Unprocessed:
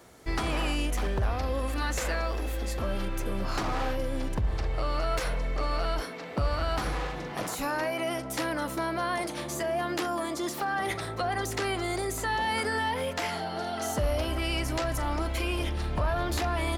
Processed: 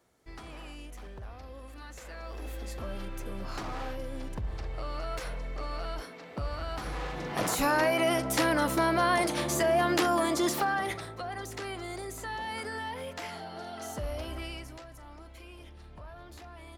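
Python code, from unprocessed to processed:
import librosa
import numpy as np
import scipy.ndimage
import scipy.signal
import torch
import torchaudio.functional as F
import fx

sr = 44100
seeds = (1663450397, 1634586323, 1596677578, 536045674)

y = fx.gain(x, sr, db=fx.line((2.05, -16.0), (2.46, -7.0), (6.81, -7.0), (7.5, 4.5), (10.54, 4.5), (11.14, -8.0), (14.41, -8.0), (14.88, -19.0)))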